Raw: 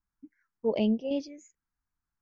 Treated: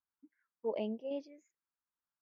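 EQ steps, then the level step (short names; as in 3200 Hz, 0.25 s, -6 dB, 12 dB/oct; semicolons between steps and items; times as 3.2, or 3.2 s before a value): band-pass 920 Hz, Q 0.68; notch 740 Hz, Q 15; -4.5 dB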